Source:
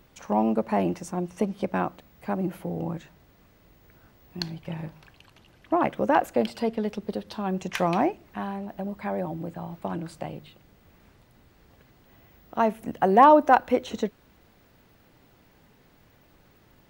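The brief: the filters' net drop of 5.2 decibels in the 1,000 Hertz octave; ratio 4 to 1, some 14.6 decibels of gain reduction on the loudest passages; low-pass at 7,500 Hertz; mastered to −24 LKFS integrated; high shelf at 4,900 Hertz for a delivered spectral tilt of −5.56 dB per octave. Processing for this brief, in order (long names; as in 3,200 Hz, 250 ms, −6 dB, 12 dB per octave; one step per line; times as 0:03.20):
low-pass filter 7,500 Hz
parametric band 1,000 Hz −7 dB
high-shelf EQ 4,900 Hz +3 dB
downward compressor 4 to 1, threshold −32 dBFS
level +13 dB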